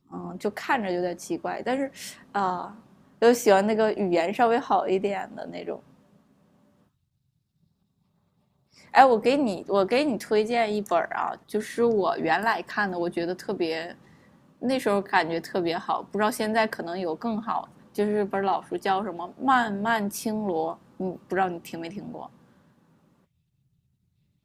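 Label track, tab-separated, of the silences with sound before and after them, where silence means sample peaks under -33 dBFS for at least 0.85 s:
5.760000	8.940000	silence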